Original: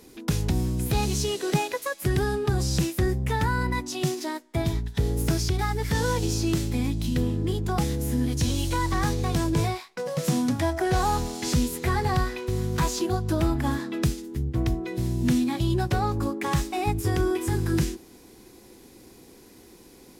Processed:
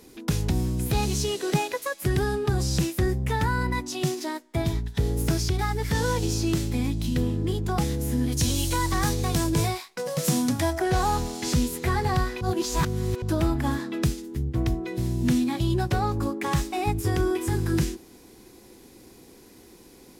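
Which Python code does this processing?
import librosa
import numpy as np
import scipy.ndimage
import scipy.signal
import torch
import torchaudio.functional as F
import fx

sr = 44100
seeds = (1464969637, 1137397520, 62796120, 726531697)

y = fx.high_shelf(x, sr, hz=5100.0, db=8.5, at=(8.32, 10.79))
y = fx.edit(y, sr, fx.reverse_span(start_s=12.41, length_s=0.81), tone=tone)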